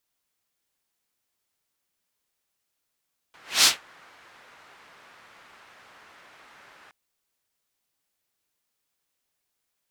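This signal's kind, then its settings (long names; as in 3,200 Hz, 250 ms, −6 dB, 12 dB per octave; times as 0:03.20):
pass-by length 3.57 s, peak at 0:00.31, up 0.24 s, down 0.17 s, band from 1,500 Hz, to 5,100 Hz, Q 1.1, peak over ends 37 dB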